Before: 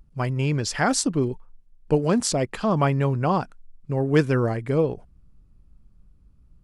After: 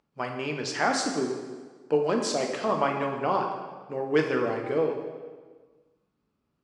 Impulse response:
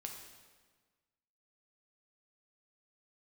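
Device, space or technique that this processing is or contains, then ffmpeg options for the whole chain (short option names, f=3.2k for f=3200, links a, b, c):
supermarket ceiling speaker: -filter_complex "[0:a]highpass=340,lowpass=5.4k[a];[1:a]atrim=start_sample=2205[b];[a][b]afir=irnorm=-1:irlink=0,volume=2dB"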